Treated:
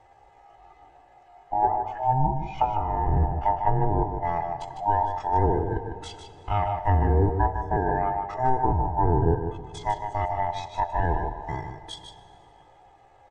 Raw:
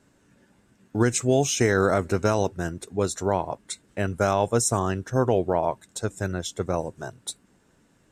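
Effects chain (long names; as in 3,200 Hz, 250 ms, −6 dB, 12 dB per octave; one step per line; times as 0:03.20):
neighbouring bands swapped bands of 500 Hz
treble cut that deepens with the level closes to 500 Hz, closed at −17 dBFS
comb filter 2.4 ms, depth 66%
in parallel at +2 dB: downward compressor 6 to 1, threshold −36 dBFS, peak gain reduction 17.5 dB
on the sum: tempo change 0.61×
head-to-tape spacing loss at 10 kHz 25 dB
single-tap delay 152 ms −7.5 dB
on a send at −13.5 dB: convolution reverb RT60 3.2 s, pre-delay 57 ms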